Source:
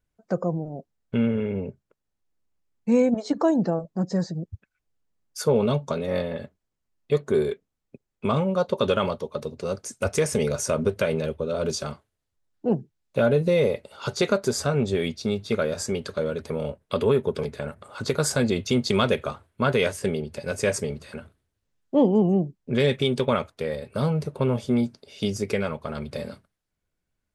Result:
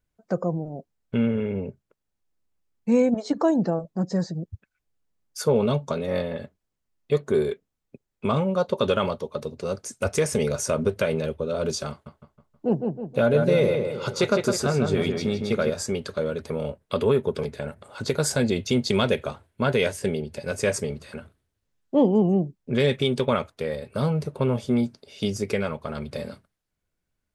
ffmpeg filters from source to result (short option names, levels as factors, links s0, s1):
-filter_complex "[0:a]asettb=1/sr,asplit=3[s0][s1][s2];[s0]atrim=end=11.904[s3];[s1]atrim=start=11.9:end=15.7,asetpts=PTS-STARTPTS,afade=t=in:d=0.004:c=qsin,afade=t=out:st=3.796:d=0.004:c=qsin,asplit=2[s4][s5];[s5]adelay=159,lowpass=f=3200:p=1,volume=0.596,asplit=2[s6][s7];[s7]adelay=159,lowpass=f=3200:p=1,volume=0.47,asplit=2[s8][s9];[s9]adelay=159,lowpass=f=3200:p=1,volume=0.47,asplit=2[s10][s11];[s11]adelay=159,lowpass=f=3200:p=1,volume=0.47,asplit=2[s12][s13];[s13]adelay=159,lowpass=f=3200:p=1,volume=0.47,asplit=2[s14][s15];[s15]adelay=159,lowpass=f=3200:p=1,volume=0.47[s16];[s4][s6][s8][s10][s12][s14][s16]amix=inputs=7:normalize=0,atrim=end_sample=167580[s17];[s2]atrim=start=15.696[s18];[s3][s17]acrossfade=d=0.004:c1=hsin:c2=qsin[s19];[s19][s18]acrossfade=d=0.004:c1=qsin:c2=hsin,asettb=1/sr,asplit=3[s20][s21][s22];[s20]atrim=end=17.534[s23];[s21]atrim=start=17.53:end=20.41,asetpts=PTS-STARTPTS,afade=t=in:d=0.004:c=qsin,afade=t=out:st=2.876:d=0.004:c=qsin,equalizer=f=1200:t=o:w=0.29:g=-6[s24];[s22]atrim=start=20.406[s25];[s23][s24]acrossfade=d=0.004:c1=hsin:c2=qsin[s26];[s26][s25]acrossfade=d=0.004:c1=qsin:c2=hsin"